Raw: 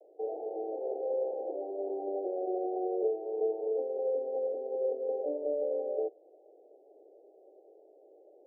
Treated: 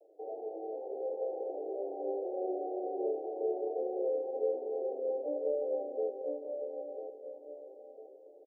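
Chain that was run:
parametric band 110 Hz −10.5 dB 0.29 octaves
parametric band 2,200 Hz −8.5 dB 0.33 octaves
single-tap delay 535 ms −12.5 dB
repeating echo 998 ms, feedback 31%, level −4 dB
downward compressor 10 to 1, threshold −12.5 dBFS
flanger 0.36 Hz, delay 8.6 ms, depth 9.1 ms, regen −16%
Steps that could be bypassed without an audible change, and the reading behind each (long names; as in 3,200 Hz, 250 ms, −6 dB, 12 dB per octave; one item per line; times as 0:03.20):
parametric band 110 Hz: nothing at its input below 250 Hz
parametric band 2,200 Hz: nothing at its input above 810 Hz
downward compressor, threshold −12.5 dBFS: peak of its input −19.5 dBFS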